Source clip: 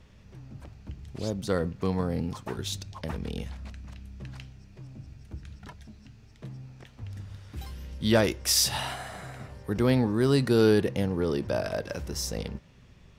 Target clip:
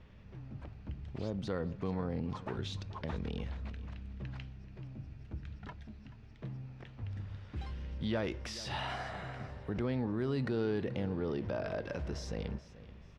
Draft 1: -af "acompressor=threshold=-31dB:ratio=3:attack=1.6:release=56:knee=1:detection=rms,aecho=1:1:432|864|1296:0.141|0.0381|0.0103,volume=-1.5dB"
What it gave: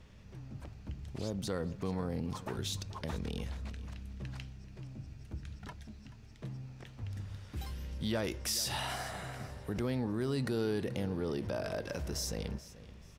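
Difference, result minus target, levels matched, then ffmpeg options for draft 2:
4000 Hz band +4.5 dB
-af "acompressor=threshold=-31dB:ratio=3:attack=1.6:release=56:knee=1:detection=rms,lowpass=3.2k,aecho=1:1:432|864|1296:0.141|0.0381|0.0103,volume=-1.5dB"

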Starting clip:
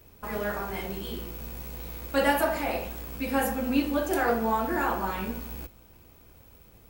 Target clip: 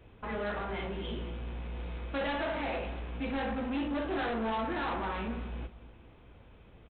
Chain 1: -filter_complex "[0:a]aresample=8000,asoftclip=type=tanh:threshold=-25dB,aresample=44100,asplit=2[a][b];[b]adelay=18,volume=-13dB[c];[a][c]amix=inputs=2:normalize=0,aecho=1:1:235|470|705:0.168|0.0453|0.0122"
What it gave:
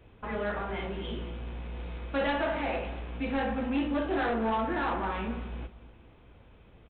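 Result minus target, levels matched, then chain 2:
soft clip: distortion -4 dB
-filter_complex "[0:a]aresample=8000,asoftclip=type=tanh:threshold=-31dB,aresample=44100,asplit=2[a][b];[b]adelay=18,volume=-13dB[c];[a][c]amix=inputs=2:normalize=0,aecho=1:1:235|470|705:0.168|0.0453|0.0122"

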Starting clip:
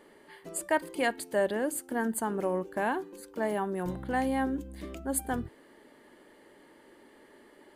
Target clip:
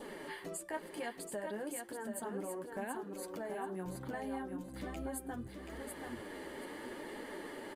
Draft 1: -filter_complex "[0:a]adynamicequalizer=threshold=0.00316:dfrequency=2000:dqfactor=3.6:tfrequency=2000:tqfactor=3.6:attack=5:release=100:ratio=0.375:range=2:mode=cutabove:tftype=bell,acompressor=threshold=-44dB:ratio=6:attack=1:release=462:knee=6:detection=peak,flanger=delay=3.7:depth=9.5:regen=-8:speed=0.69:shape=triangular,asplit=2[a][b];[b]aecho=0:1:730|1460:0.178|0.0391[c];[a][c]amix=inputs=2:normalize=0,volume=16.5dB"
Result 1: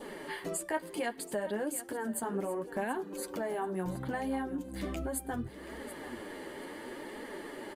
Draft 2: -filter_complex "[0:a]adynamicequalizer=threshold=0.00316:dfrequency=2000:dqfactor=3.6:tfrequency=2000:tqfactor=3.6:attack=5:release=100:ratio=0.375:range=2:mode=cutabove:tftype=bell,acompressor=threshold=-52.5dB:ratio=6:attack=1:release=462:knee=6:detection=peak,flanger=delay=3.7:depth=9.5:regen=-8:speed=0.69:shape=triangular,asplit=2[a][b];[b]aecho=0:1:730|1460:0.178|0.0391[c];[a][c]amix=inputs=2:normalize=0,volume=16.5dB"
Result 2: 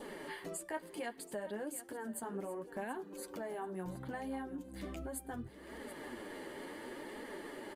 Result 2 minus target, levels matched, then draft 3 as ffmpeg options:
echo-to-direct -9.5 dB
-filter_complex "[0:a]adynamicequalizer=threshold=0.00316:dfrequency=2000:dqfactor=3.6:tfrequency=2000:tqfactor=3.6:attack=5:release=100:ratio=0.375:range=2:mode=cutabove:tftype=bell,acompressor=threshold=-52.5dB:ratio=6:attack=1:release=462:knee=6:detection=peak,flanger=delay=3.7:depth=9.5:regen=-8:speed=0.69:shape=triangular,asplit=2[a][b];[b]aecho=0:1:730|1460|2190:0.531|0.117|0.0257[c];[a][c]amix=inputs=2:normalize=0,volume=16.5dB"

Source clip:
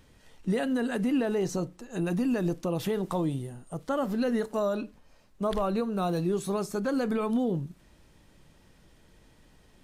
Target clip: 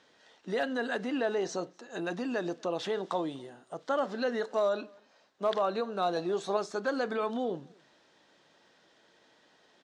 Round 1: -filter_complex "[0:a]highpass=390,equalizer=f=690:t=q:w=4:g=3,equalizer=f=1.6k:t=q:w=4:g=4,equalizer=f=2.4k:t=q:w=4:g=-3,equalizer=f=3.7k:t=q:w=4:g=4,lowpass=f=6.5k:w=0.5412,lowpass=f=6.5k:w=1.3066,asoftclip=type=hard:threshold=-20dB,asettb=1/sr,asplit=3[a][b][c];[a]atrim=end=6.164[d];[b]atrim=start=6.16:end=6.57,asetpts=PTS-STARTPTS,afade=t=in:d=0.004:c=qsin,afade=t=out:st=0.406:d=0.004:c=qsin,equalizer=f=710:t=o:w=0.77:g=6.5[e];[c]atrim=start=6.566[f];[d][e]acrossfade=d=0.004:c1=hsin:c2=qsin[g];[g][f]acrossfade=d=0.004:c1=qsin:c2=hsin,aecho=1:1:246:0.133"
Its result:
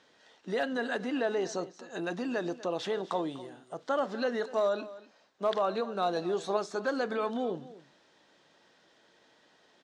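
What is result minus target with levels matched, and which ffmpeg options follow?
echo-to-direct +11 dB
-filter_complex "[0:a]highpass=390,equalizer=f=690:t=q:w=4:g=3,equalizer=f=1.6k:t=q:w=4:g=4,equalizer=f=2.4k:t=q:w=4:g=-3,equalizer=f=3.7k:t=q:w=4:g=4,lowpass=f=6.5k:w=0.5412,lowpass=f=6.5k:w=1.3066,asoftclip=type=hard:threshold=-20dB,asettb=1/sr,asplit=3[a][b][c];[a]atrim=end=6.164[d];[b]atrim=start=6.16:end=6.57,asetpts=PTS-STARTPTS,afade=t=in:d=0.004:c=qsin,afade=t=out:st=0.406:d=0.004:c=qsin,equalizer=f=710:t=o:w=0.77:g=6.5[e];[c]atrim=start=6.566[f];[d][e]acrossfade=d=0.004:c1=hsin:c2=qsin[g];[g][f]acrossfade=d=0.004:c1=qsin:c2=hsin,aecho=1:1:246:0.0376"

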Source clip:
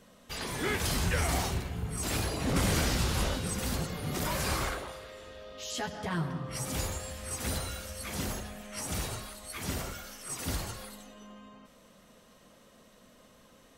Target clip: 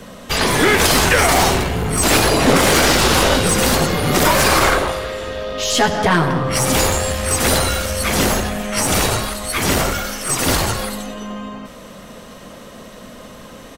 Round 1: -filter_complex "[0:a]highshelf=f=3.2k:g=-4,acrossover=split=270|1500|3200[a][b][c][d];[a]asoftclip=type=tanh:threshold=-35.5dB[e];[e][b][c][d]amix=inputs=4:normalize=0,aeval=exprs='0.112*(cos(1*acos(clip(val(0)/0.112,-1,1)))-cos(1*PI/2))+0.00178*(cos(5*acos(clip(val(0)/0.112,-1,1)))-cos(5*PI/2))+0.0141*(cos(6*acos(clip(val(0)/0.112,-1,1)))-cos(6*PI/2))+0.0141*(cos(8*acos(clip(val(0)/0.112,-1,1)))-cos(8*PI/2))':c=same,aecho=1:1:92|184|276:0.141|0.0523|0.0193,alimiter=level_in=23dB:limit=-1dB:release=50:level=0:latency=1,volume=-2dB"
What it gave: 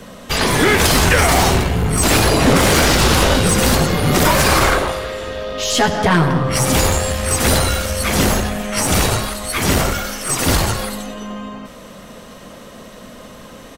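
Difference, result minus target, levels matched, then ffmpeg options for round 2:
soft clip: distortion -4 dB
-filter_complex "[0:a]highshelf=f=3.2k:g=-4,acrossover=split=270|1500|3200[a][b][c][d];[a]asoftclip=type=tanh:threshold=-42dB[e];[e][b][c][d]amix=inputs=4:normalize=0,aeval=exprs='0.112*(cos(1*acos(clip(val(0)/0.112,-1,1)))-cos(1*PI/2))+0.00178*(cos(5*acos(clip(val(0)/0.112,-1,1)))-cos(5*PI/2))+0.0141*(cos(6*acos(clip(val(0)/0.112,-1,1)))-cos(6*PI/2))+0.0141*(cos(8*acos(clip(val(0)/0.112,-1,1)))-cos(8*PI/2))':c=same,aecho=1:1:92|184|276:0.141|0.0523|0.0193,alimiter=level_in=23dB:limit=-1dB:release=50:level=0:latency=1,volume=-2dB"

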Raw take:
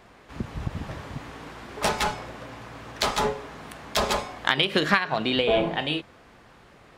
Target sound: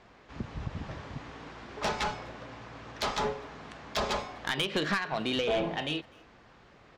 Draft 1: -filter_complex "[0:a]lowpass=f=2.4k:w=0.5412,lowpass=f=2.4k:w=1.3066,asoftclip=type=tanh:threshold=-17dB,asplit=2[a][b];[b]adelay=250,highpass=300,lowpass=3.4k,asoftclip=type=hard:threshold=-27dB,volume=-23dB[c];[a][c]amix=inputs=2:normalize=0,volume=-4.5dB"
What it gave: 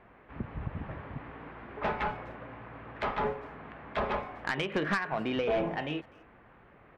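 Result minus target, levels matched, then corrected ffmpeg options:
8000 Hz band -13.0 dB
-filter_complex "[0:a]lowpass=f=6.7k:w=0.5412,lowpass=f=6.7k:w=1.3066,asoftclip=type=tanh:threshold=-17dB,asplit=2[a][b];[b]adelay=250,highpass=300,lowpass=3.4k,asoftclip=type=hard:threshold=-27dB,volume=-23dB[c];[a][c]amix=inputs=2:normalize=0,volume=-4.5dB"

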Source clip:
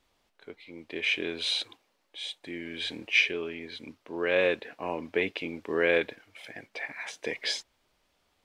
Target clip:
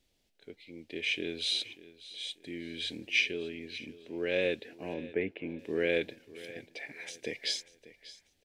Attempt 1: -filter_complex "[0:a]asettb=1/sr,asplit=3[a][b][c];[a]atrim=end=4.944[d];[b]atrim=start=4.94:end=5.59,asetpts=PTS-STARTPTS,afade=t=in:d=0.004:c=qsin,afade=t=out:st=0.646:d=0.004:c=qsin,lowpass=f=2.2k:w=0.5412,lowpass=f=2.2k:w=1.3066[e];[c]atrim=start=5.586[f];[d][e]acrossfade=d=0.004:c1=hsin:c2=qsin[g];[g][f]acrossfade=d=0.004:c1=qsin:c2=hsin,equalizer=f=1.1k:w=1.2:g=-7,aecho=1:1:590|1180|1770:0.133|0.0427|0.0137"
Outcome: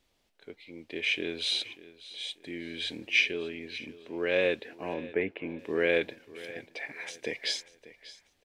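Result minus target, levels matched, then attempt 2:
1000 Hz band +5.0 dB
-filter_complex "[0:a]asettb=1/sr,asplit=3[a][b][c];[a]atrim=end=4.944[d];[b]atrim=start=4.94:end=5.59,asetpts=PTS-STARTPTS,afade=t=in:d=0.004:c=qsin,afade=t=out:st=0.646:d=0.004:c=qsin,lowpass=f=2.2k:w=0.5412,lowpass=f=2.2k:w=1.3066[e];[c]atrim=start=5.586[f];[d][e]acrossfade=d=0.004:c1=hsin:c2=qsin[g];[g][f]acrossfade=d=0.004:c1=qsin:c2=hsin,equalizer=f=1.1k:w=1.2:g=-19,aecho=1:1:590|1180|1770:0.133|0.0427|0.0137"

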